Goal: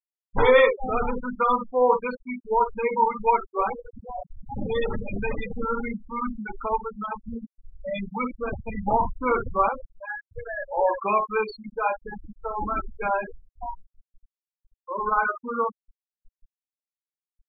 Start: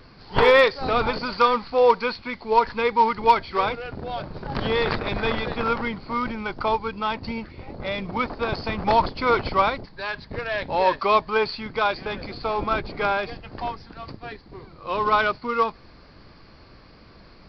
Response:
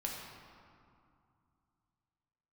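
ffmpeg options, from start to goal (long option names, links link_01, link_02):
-filter_complex "[1:a]atrim=start_sample=2205,atrim=end_sample=3528[link_01];[0:a][link_01]afir=irnorm=-1:irlink=0,afftfilt=real='re*gte(hypot(re,im),0.158)':imag='im*gte(hypot(re,im),0.158)':win_size=1024:overlap=0.75,volume=-1.5dB"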